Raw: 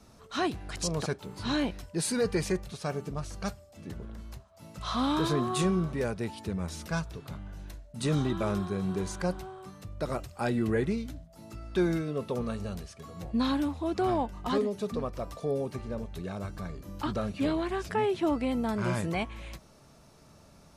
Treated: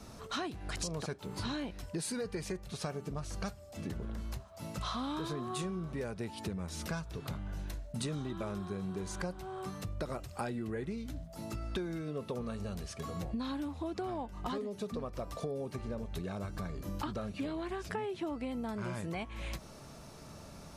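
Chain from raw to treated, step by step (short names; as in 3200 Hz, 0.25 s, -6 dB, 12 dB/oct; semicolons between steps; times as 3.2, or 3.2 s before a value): compressor 10:1, threshold -41 dBFS, peak gain reduction 19 dB; gain +6 dB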